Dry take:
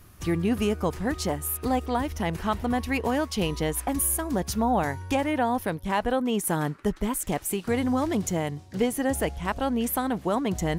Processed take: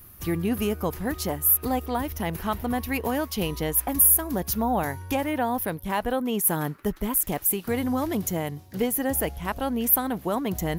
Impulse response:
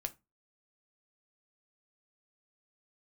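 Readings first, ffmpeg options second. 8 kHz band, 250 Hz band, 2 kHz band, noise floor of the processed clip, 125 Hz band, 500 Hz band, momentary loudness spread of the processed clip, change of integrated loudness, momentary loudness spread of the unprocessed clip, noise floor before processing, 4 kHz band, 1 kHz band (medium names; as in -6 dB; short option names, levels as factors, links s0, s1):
+5.0 dB, -1.0 dB, -1.0 dB, -47 dBFS, -1.0 dB, -1.0 dB, 9 LU, +2.0 dB, 4 LU, -47 dBFS, -1.0 dB, -1.0 dB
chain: -af "aexciter=amount=4.9:drive=7:freq=11000,volume=0.891"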